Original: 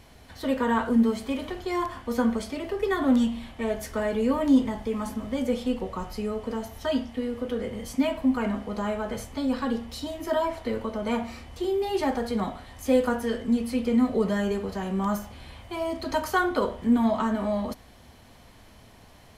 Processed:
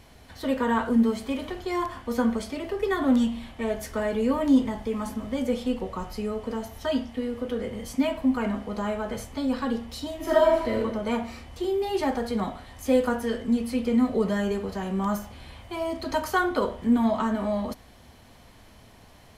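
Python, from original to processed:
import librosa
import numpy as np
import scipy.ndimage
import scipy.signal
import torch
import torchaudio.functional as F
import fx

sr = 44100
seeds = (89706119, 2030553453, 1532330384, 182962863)

y = fx.reverb_throw(x, sr, start_s=10.16, length_s=0.64, rt60_s=0.87, drr_db=-2.0)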